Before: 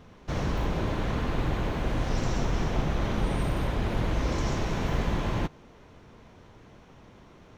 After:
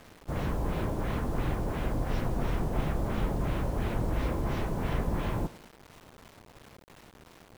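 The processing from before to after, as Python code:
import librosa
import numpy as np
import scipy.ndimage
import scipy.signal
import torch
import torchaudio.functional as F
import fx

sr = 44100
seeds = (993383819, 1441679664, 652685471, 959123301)

y = fx.filter_lfo_lowpass(x, sr, shape='sine', hz=2.9, low_hz=780.0, high_hz=4000.0, q=0.84)
y = fx.echo_thinned(y, sr, ms=97, feedback_pct=44, hz=150.0, wet_db=-17.0)
y = fx.quant_dither(y, sr, seeds[0], bits=8, dither='none')
y = y * librosa.db_to_amplitude(-2.5)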